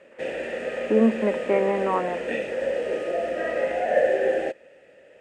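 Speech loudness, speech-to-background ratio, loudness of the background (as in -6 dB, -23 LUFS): -24.0 LUFS, 2.5 dB, -26.5 LUFS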